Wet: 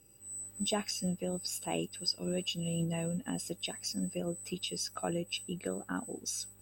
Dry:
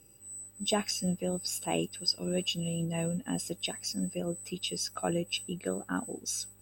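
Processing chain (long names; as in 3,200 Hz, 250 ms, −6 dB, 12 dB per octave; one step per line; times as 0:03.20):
camcorder AGC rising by 14 dB per second
level −4 dB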